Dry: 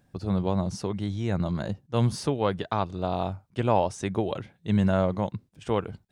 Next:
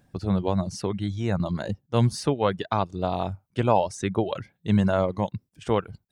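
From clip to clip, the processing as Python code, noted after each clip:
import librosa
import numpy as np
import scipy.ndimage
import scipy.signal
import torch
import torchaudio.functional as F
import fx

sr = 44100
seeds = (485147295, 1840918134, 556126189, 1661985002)

y = fx.dereverb_blind(x, sr, rt60_s=0.69)
y = y * 10.0 ** (3.0 / 20.0)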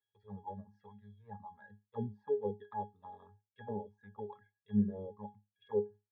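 y = fx.auto_wah(x, sr, base_hz=340.0, top_hz=3200.0, q=3.3, full_db=-16.5, direction='down')
y = fx.env_flanger(y, sr, rest_ms=2.2, full_db=-25.5)
y = fx.octave_resonator(y, sr, note='G#', decay_s=0.21)
y = y * 10.0 ** (8.0 / 20.0)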